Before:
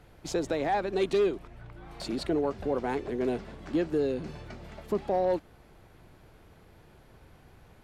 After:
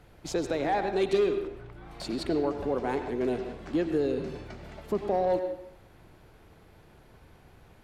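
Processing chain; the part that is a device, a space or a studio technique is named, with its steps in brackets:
filtered reverb send (on a send: high-pass filter 250 Hz + low-pass filter 4,800 Hz + convolution reverb RT60 0.75 s, pre-delay 83 ms, DRR 7 dB)

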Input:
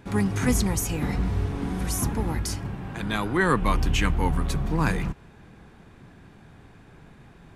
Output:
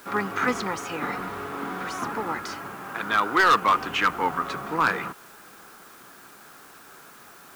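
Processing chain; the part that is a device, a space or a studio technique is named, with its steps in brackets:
drive-through speaker (band-pass filter 380–3,600 Hz; parametric band 1,300 Hz +12 dB 0.52 octaves; hard clipping −16 dBFS, distortion −11 dB; white noise bed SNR 25 dB)
level +2.5 dB

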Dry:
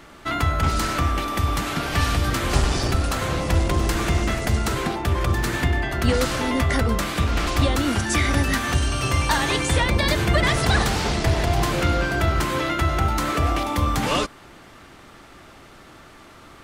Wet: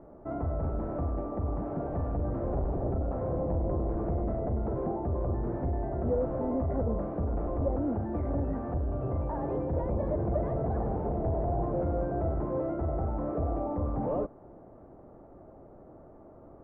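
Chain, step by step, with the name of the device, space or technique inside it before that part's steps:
overdriven synthesiser ladder filter (soft clipping −21 dBFS, distortion −10 dB; transistor ladder low-pass 760 Hz, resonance 40%)
level +3.5 dB

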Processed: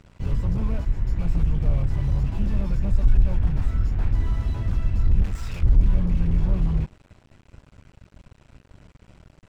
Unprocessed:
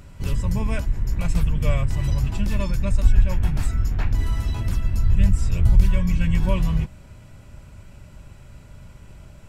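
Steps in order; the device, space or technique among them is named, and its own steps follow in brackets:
low-pass filter 6,300 Hz 12 dB per octave
early transistor amplifier (dead-zone distortion −43 dBFS; slew-rate limiting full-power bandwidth 12 Hz)
0:05.23–0:05.63: tilt shelving filter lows −9 dB, about 700 Hz

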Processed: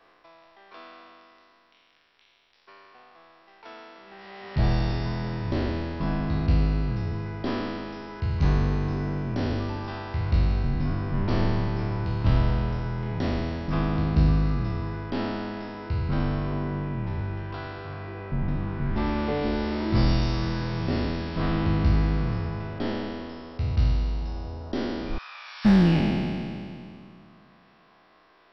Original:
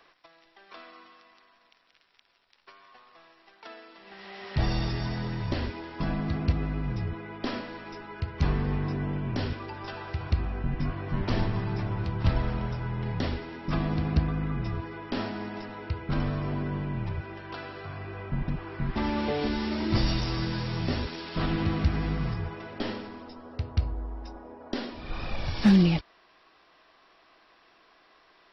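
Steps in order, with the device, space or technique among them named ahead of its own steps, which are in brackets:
peak hold with a decay on every bin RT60 2.51 s
behind a face mask (high-shelf EQ 2,200 Hz −8 dB)
0:25.18–0:25.65: Chebyshev high-pass filter 1,200 Hz, order 3

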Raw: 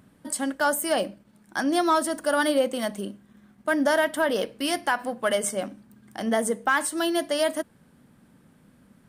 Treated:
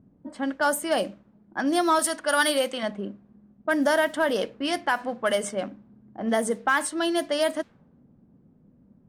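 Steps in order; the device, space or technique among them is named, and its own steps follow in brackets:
0:01.99–0:02.83: tilt shelving filter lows −6.5 dB, about 800 Hz
cassette deck with a dynamic noise filter (white noise bed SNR 31 dB; low-pass that shuts in the quiet parts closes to 400 Hz, open at −19.5 dBFS)

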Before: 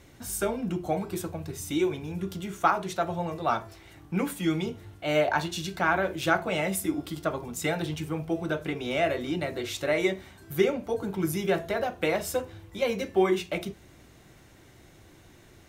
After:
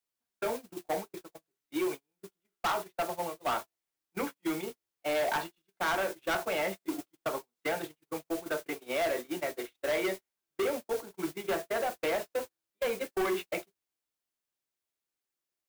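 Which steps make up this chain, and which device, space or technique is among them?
aircraft radio (band-pass filter 370–2,600 Hz; hard clipping −26.5 dBFS, distortion −8 dB; white noise bed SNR 11 dB; noise gate −34 dBFS, range −45 dB)

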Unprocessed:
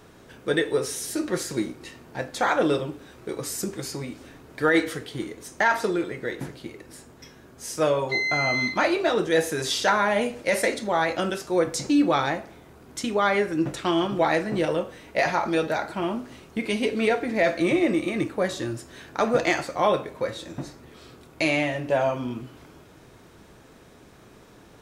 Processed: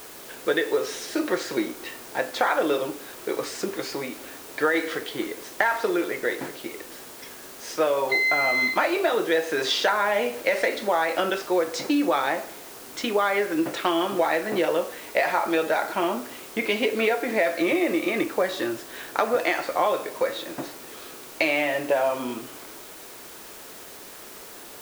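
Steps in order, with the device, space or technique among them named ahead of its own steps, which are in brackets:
baby monitor (band-pass filter 380–3,800 Hz; downward compressor, threshold −26 dBFS, peak gain reduction 10 dB; white noise bed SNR 18 dB)
level +7 dB

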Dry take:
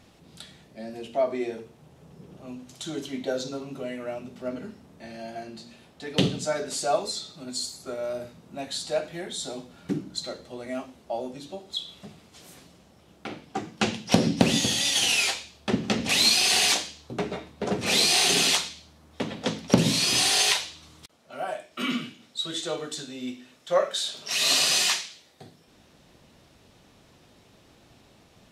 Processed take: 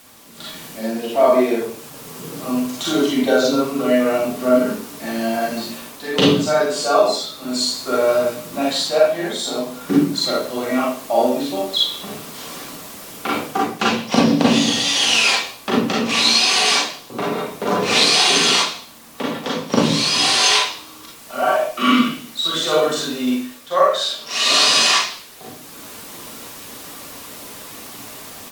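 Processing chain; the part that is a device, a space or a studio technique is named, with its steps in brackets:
filmed off a television (band-pass filter 210–7,100 Hz; parametric band 1,100 Hz +9 dB 0.38 octaves; convolution reverb RT60 0.45 s, pre-delay 33 ms, DRR −5 dB; white noise bed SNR 24 dB; automatic gain control gain up to 11.5 dB; level −1 dB; AAC 96 kbit/s 44,100 Hz)

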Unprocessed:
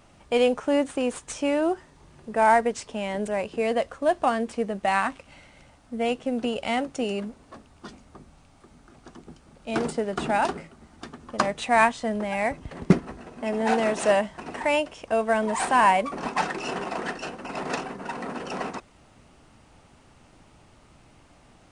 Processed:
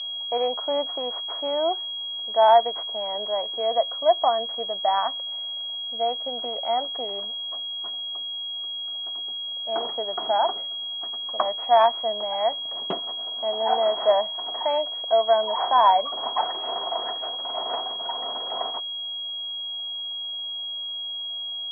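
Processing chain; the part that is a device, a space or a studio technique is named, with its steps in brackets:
toy sound module (linearly interpolated sample-rate reduction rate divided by 6×; switching amplifier with a slow clock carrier 3,300 Hz; loudspeaker in its box 650–4,500 Hz, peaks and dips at 680 Hz +9 dB, 1,000 Hz +4 dB, 1,600 Hz −4 dB, 2,300 Hz −3 dB, 3,700 Hz −7 dB)

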